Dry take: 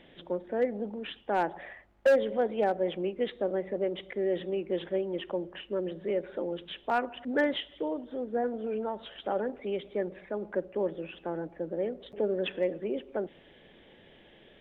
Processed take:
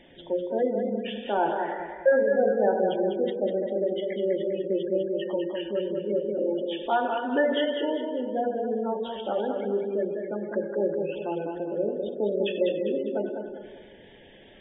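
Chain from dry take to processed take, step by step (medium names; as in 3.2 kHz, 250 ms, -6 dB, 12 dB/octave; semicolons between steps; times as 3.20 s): gated-style reverb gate 420 ms falling, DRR 1.5 dB; spectral gate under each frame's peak -20 dB strong; modulated delay 200 ms, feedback 41%, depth 56 cents, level -6 dB; trim +1.5 dB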